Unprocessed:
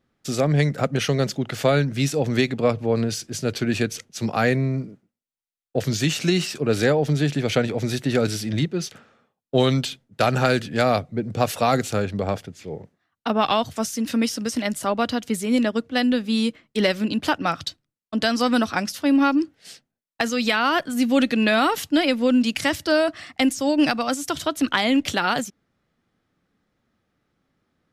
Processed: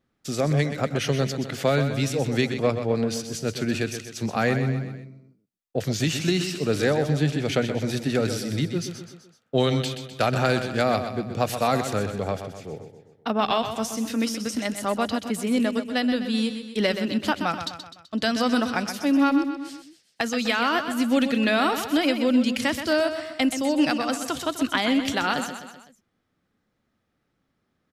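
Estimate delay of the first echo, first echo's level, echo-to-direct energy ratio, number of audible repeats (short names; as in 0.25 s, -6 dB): 0.127 s, -9.0 dB, -7.5 dB, 4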